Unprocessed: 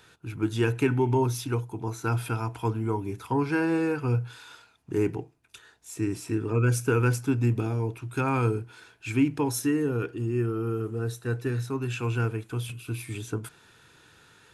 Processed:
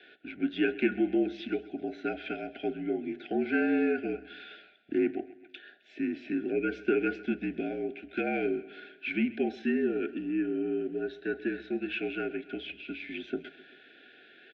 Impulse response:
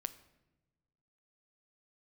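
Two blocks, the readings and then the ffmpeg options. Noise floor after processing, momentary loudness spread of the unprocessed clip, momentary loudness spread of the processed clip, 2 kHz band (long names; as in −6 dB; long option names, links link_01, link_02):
−57 dBFS, 10 LU, 12 LU, 0.0 dB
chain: -filter_complex "[0:a]asplit=2[link_01][link_02];[link_02]acompressor=threshold=-32dB:ratio=6,volume=-1dB[link_03];[link_01][link_03]amix=inputs=2:normalize=0,asuperstop=centerf=1100:order=20:qfactor=1.7,highpass=frequency=320:width_type=q:width=0.5412,highpass=frequency=320:width_type=q:width=1.307,lowpass=frequency=3500:width_type=q:width=0.5176,lowpass=frequency=3500:width_type=q:width=0.7071,lowpass=frequency=3500:width_type=q:width=1.932,afreqshift=-51,aecho=1:1:131|262|393|524:0.112|0.0595|0.0315|0.0167,volume=-1.5dB"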